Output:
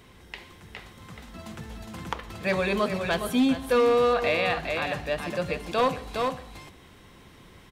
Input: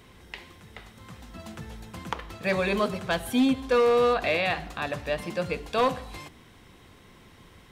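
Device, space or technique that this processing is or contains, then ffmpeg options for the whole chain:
ducked delay: -filter_complex "[0:a]asplit=3[s0][s1][s2];[s1]adelay=412,volume=0.631[s3];[s2]apad=whole_len=358323[s4];[s3][s4]sidechaincompress=threshold=0.0398:ratio=8:attack=11:release=273[s5];[s0][s5]amix=inputs=2:normalize=0"

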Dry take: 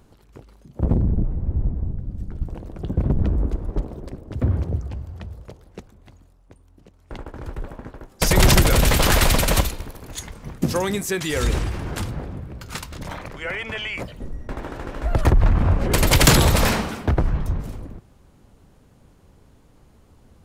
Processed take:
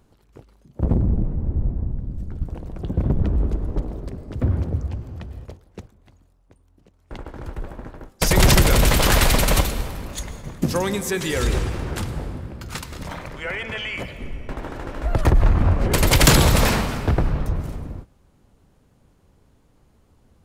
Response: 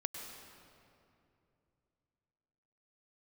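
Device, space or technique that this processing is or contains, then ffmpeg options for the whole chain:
keyed gated reverb: -filter_complex "[0:a]asplit=3[s0][s1][s2];[1:a]atrim=start_sample=2205[s3];[s1][s3]afir=irnorm=-1:irlink=0[s4];[s2]apad=whole_len=901525[s5];[s4][s5]sidechaingate=range=0.0224:threshold=0.01:ratio=16:detection=peak,volume=0.891[s6];[s0][s6]amix=inputs=2:normalize=0,volume=0.562"

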